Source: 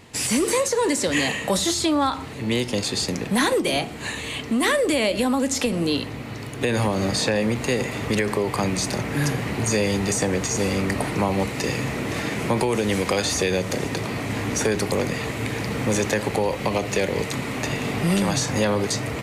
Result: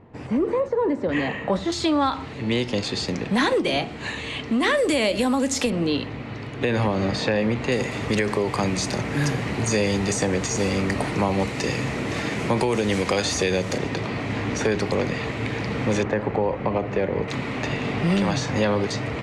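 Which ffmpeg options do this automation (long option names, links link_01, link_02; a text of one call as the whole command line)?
ffmpeg -i in.wav -af "asetnsamples=nb_out_samples=441:pad=0,asendcmd='1.09 lowpass f 1800;1.72 lowpass f 4700;4.77 lowpass f 9500;5.7 lowpass f 3700;7.72 lowpass f 7400;13.78 lowpass f 4400;16.03 lowpass f 1600;17.28 lowpass f 4100',lowpass=1000" out.wav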